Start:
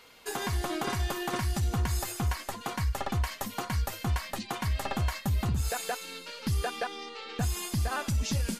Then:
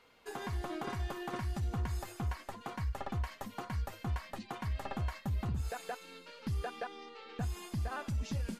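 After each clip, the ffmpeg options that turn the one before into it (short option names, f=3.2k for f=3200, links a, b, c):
-af "highshelf=f=3.4k:g=-11,volume=-6.5dB"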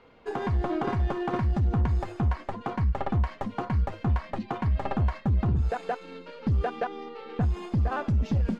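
-filter_complex "[0:a]asplit=2[a][b];[b]adynamicsmooth=sensitivity=3:basefreq=950,volume=-0.5dB[c];[a][c]amix=inputs=2:normalize=0,asoftclip=type=tanh:threshold=-25.5dB,adynamicsmooth=sensitivity=6.5:basefreq=3.1k,volume=7.5dB"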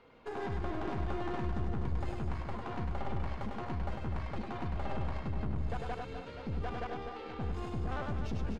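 -af "alimiter=level_in=4dB:limit=-24dB:level=0:latency=1:release=56,volume=-4dB,aeval=exprs='(tanh(44.7*val(0)+0.75)-tanh(0.75))/44.7':c=same,aecho=1:1:100|250|475|812.5|1319:0.631|0.398|0.251|0.158|0.1"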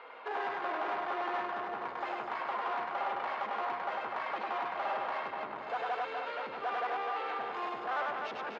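-filter_complex "[0:a]asplit=2[a][b];[b]highpass=f=720:p=1,volume=24dB,asoftclip=type=tanh:threshold=-23dB[c];[a][c]amix=inputs=2:normalize=0,lowpass=f=1k:p=1,volume=-6dB,highpass=750,lowpass=4.3k,volume=3dB"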